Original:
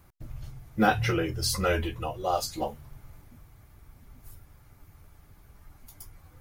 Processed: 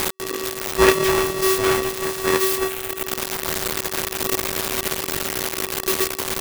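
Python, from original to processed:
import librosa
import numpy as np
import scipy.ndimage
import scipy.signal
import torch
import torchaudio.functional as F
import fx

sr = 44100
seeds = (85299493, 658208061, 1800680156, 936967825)

p1 = x + 0.5 * 10.0 ** (-22.5 / 20.0) * np.diff(np.sign(x), prepend=np.sign(x[:1]))
p2 = fx.rider(p1, sr, range_db=10, speed_s=2.0)
p3 = p1 + (p2 * librosa.db_to_amplitude(1.0))
p4 = np.abs(p3)
p5 = fx.fixed_phaser(p4, sr, hz=1000.0, stages=8, at=(2.58, 3.07))
p6 = p5 * np.sign(np.sin(2.0 * np.pi * 380.0 * np.arange(len(p5)) / sr))
y = p6 * librosa.db_to_amplitude(1.0)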